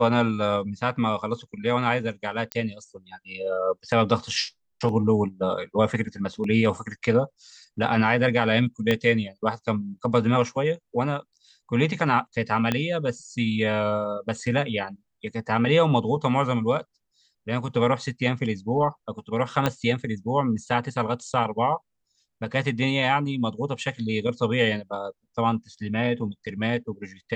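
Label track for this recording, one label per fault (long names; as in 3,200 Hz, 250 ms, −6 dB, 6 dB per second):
2.520000	2.520000	click −12 dBFS
8.910000	8.910000	click −10 dBFS
12.720000	12.720000	click −9 dBFS
19.660000	19.660000	click −8 dBFS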